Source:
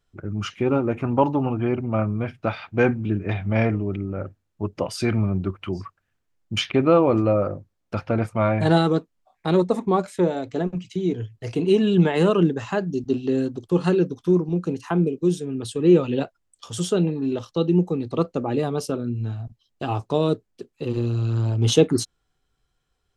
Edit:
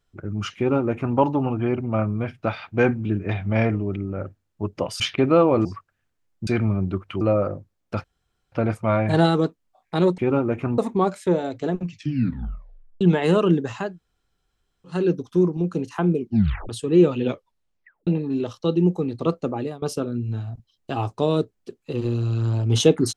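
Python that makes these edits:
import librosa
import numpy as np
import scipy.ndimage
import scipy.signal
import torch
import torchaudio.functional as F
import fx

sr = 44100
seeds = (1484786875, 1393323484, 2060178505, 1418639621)

y = fx.edit(x, sr, fx.duplicate(start_s=0.57, length_s=0.6, to_s=9.7),
    fx.swap(start_s=5.0, length_s=0.74, other_s=6.56, other_length_s=0.65),
    fx.insert_room_tone(at_s=8.04, length_s=0.48),
    fx.tape_stop(start_s=10.76, length_s=1.17),
    fx.room_tone_fill(start_s=12.79, length_s=1.09, crossfade_s=0.24),
    fx.tape_stop(start_s=15.11, length_s=0.5),
    fx.tape_stop(start_s=16.13, length_s=0.86),
    fx.fade_out_to(start_s=18.41, length_s=0.33, floor_db=-23.0), tone=tone)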